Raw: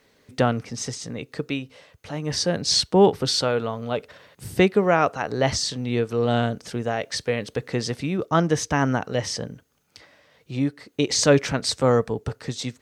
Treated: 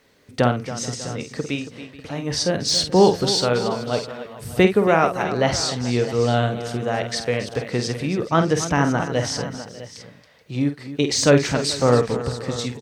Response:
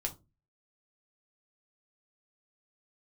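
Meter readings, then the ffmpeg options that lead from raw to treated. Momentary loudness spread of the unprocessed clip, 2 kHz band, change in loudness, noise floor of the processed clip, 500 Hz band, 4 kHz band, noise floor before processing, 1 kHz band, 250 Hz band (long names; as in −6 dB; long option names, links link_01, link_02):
13 LU, +2.5 dB, +2.5 dB, −48 dBFS, +2.5 dB, +1.5 dB, −62 dBFS, +2.5 dB, +2.5 dB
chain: -filter_complex "[0:a]deesser=0.4,asplit=2[link_01][link_02];[link_02]aecho=0:1:49|277|430|594|653:0.376|0.237|0.112|0.106|0.178[link_03];[link_01][link_03]amix=inputs=2:normalize=0,volume=1.5dB"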